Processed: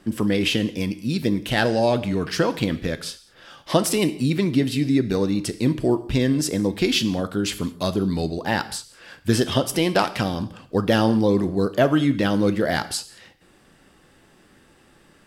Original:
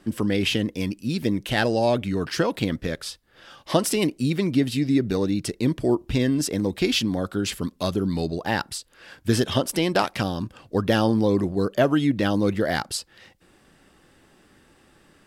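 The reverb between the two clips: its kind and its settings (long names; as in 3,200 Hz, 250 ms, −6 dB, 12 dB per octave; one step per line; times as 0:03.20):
reverb whose tail is shaped and stops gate 240 ms falling, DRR 11.5 dB
level +1.5 dB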